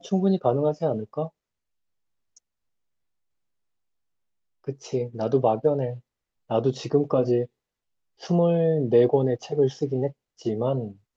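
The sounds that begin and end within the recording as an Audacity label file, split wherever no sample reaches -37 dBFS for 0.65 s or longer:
4.670000	7.450000	sound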